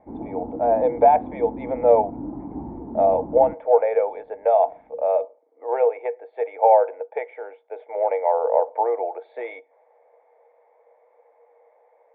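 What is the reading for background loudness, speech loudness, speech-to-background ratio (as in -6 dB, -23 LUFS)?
-34.5 LUFS, -21.5 LUFS, 13.0 dB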